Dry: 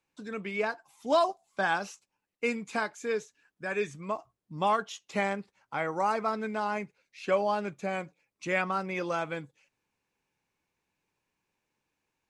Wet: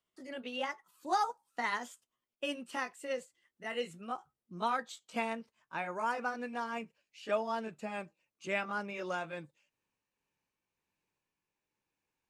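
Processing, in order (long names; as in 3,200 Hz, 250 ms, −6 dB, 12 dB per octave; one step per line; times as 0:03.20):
pitch glide at a constant tempo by +4 semitones ending unshifted
level −5 dB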